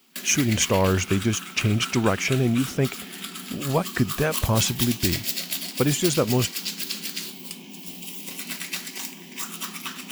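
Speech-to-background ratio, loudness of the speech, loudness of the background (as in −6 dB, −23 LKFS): 6.5 dB, −24.0 LKFS, −30.5 LKFS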